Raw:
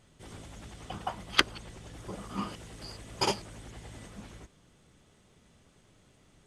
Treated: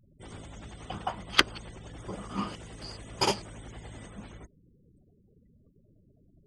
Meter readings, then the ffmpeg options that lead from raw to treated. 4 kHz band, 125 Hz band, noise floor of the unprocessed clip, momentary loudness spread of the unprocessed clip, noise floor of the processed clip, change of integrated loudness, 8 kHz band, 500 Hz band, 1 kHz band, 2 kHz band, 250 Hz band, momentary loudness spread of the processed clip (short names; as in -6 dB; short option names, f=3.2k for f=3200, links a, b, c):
+2.0 dB, +2.0 dB, -64 dBFS, 21 LU, -64 dBFS, +2.0 dB, +1.5 dB, +2.0 dB, +2.0 dB, +2.0 dB, +2.0 dB, 21 LU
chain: -af "afftfilt=real='re*gte(hypot(re,im),0.002)':imag='im*gte(hypot(re,im),0.002)':win_size=1024:overlap=0.75,volume=2dB"